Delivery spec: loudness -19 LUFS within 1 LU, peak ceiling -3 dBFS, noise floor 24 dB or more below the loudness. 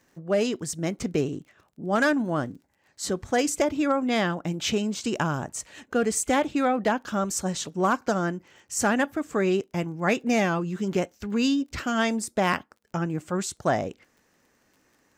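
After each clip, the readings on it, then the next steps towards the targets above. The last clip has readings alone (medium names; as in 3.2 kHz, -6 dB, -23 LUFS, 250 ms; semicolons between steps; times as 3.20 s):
tick rate 24 per s; loudness -26.5 LUFS; peak level -12.0 dBFS; loudness target -19.0 LUFS
-> de-click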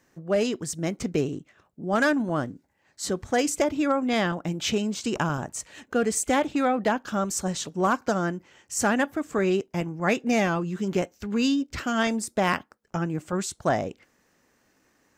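tick rate 0 per s; loudness -26.5 LUFS; peak level -12.0 dBFS; loudness target -19.0 LUFS
-> trim +7.5 dB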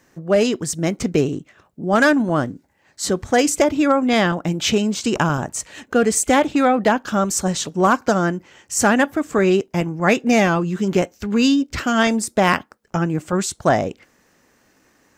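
loudness -19.0 LUFS; peak level -4.5 dBFS; noise floor -60 dBFS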